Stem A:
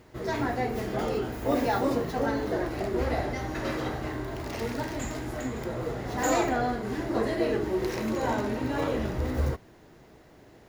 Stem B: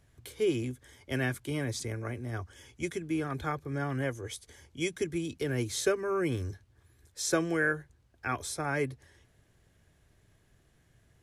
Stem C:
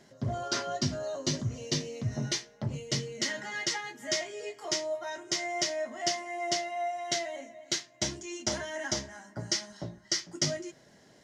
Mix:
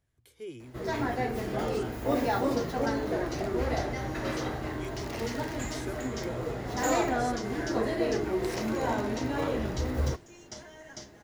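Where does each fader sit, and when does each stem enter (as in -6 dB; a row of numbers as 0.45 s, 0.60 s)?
-1.5 dB, -13.5 dB, -13.0 dB; 0.60 s, 0.00 s, 2.05 s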